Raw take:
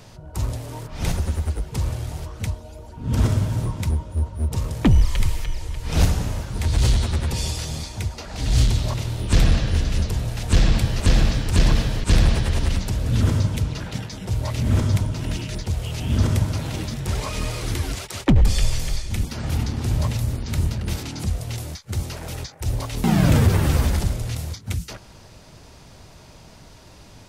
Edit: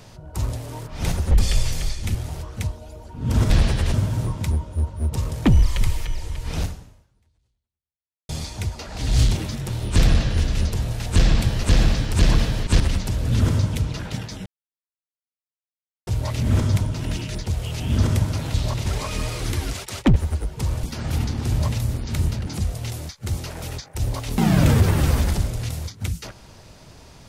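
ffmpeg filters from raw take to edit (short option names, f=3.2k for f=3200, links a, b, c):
-filter_complex "[0:a]asplit=15[a][b][c][d][e][f][g][h][i][j][k][l][m][n][o];[a]atrim=end=1.312[p];[b]atrim=start=18.378:end=19.222[q];[c]atrim=start=1.978:end=3.332[r];[d]atrim=start=12.168:end=12.612[s];[e]atrim=start=3.328:end=7.68,asetpts=PTS-STARTPTS,afade=t=out:st=2.542:d=1.81:c=exp[t];[f]atrim=start=7.68:end=8.742,asetpts=PTS-STARTPTS,afade=t=in:d=0.004:c=hsin[u];[g]atrim=start=16.738:end=17.082[v];[h]atrim=start=9.058:end=12.172[w];[i]atrim=start=12.608:end=14.27,asetpts=PTS-STARTPTS,afade=t=out:st=1.658:d=0.004:c=hsin,apad=pad_dur=1.61[x];[j]atrim=start=14.27:end=16.742,asetpts=PTS-STARTPTS,afade=t=in:d=0.004:c=hsin[y];[k]atrim=start=8.738:end=9.062[z];[l]atrim=start=17.078:end=18.382[aa];[m]atrim=start=1.308:end=1.982[ab];[n]atrim=start=19.218:end=20.862[ac];[o]atrim=start=21.128[ad];[p][q]acrossfade=d=0.004:c1=hsin:c2=hsin[ae];[ae][r]acrossfade=d=0.004:c1=hsin:c2=hsin[af];[af][s]acrossfade=d=0.004:c1=hsin:c2=hsin[ag];[t][u]concat=n=2:v=0:a=1[ah];[ag][ah]acrossfade=d=0.004:c1=hsin:c2=hsin[ai];[ai][v]acrossfade=d=0.004:c1=hsin:c2=hsin[aj];[aj][w]acrossfade=d=0.004:c1=hsin:c2=hsin[ak];[x][y]concat=n=2:v=0:a=1[al];[ak][al]acrossfade=d=0.004:c1=hsin:c2=hsin[am];[am][z]acrossfade=d=0.004:c1=hsin:c2=hsin[an];[an][aa]acrossfade=d=0.004:c1=hsin:c2=hsin[ao];[ao][ab]acrossfade=d=0.004:c1=hsin:c2=hsin[ap];[ap][ac]acrossfade=d=0.004:c1=hsin:c2=hsin[aq];[aq][ad]acrossfade=d=0.004:c1=hsin:c2=hsin"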